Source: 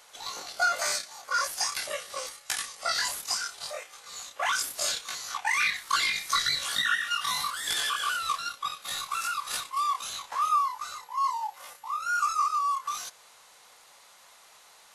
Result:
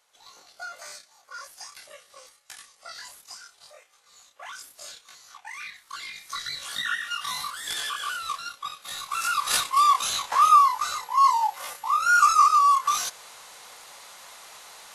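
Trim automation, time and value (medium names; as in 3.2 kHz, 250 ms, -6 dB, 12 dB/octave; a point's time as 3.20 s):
5.92 s -13 dB
6.89 s -2 dB
8.97 s -2 dB
9.48 s +9 dB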